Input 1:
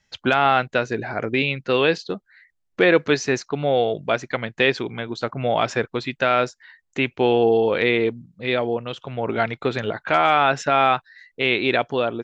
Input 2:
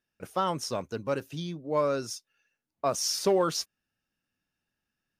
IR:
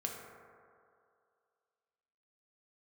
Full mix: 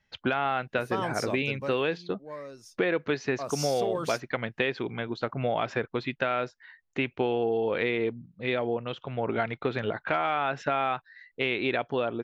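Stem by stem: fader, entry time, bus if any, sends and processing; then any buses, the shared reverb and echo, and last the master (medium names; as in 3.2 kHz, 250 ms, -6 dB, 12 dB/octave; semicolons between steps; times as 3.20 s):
-3.5 dB, 0.00 s, no send, low-pass 3.5 kHz 12 dB/octave
1.55 s -1 dB -> 1.85 s -14 dB -> 3.00 s -14 dB -> 3.66 s -3.5 dB, 0.55 s, no send, band-stop 1.4 kHz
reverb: none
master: compression, threshold -23 dBFS, peak gain reduction 8.5 dB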